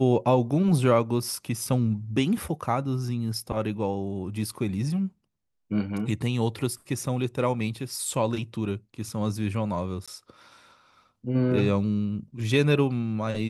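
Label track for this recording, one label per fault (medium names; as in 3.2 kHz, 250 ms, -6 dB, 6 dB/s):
10.060000	10.080000	dropout 16 ms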